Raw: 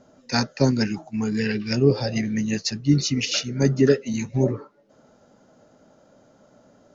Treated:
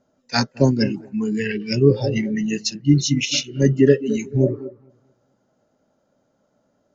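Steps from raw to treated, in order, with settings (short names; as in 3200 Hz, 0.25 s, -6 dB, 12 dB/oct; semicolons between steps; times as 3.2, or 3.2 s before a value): dark delay 0.219 s, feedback 36%, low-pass 1500 Hz, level -12 dB; spectral noise reduction 15 dB; gain +3.5 dB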